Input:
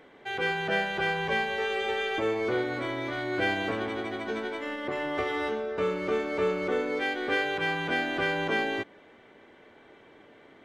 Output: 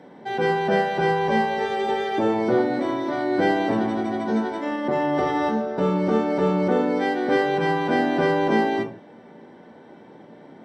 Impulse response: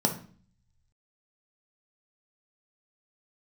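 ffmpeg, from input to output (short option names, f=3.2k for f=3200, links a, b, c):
-filter_complex "[1:a]atrim=start_sample=2205,afade=t=out:st=0.22:d=0.01,atrim=end_sample=10143,asetrate=43659,aresample=44100[a];[0:a][a]afir=irnorm=-1:irlink=0,volume=-5.5dB"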